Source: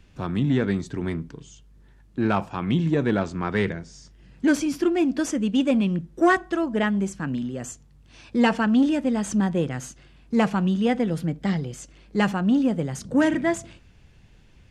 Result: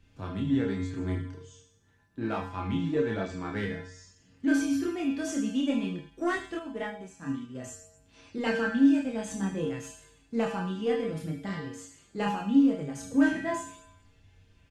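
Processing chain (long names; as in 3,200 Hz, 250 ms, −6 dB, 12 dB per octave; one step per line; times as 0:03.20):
in parallel at −9.5 dB: hard clipping −18 dBFS, distortion −12 dB
on the sum: tuned comb filter 92 Hz, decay 0.76 s, harmonics odd, mix 90%
multi-voice chorus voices 2, 0.31 Hz, delay 29 ms, depth 3.6 ms
single-tap delay 75 ms −14 dB
0:06.59–0:07.55: expander for the loud parts 1.5 to 1, over −52 dBFS
level +8.5 dB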